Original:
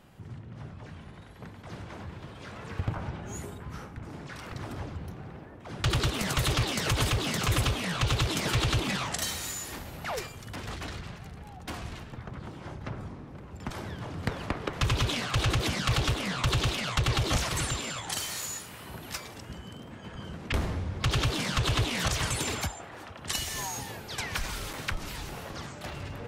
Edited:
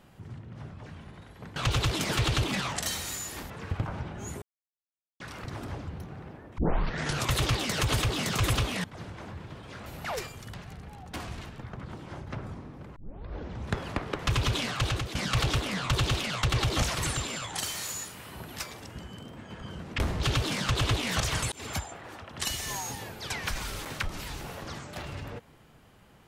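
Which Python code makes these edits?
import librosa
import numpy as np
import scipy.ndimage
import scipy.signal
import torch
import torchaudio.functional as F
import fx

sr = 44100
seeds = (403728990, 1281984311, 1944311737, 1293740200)

y = fx.edit(x, sr, fx.swap(start_s=1.56, length_s=1.02, other_s=7.92, other_length_s=1.94),
    fx.silence(start_s=3.5, length_s=0.78),
    fx.tape_start(start_s=5.66, length_s=0.75),
    fx.cut(start_s=10.54, length_s=0.54),
    fx.tape_start(start_s=13.5, length_s=0.88),
    fx.fade_out_to(start_s=15.32, length_s=0.37, floor_db=-12.5),
    fx.cut(start_s=20.74, length_s=0.34),
    fx.fade_in_span(start_s=22.4, length_s=0.27), tone=tone)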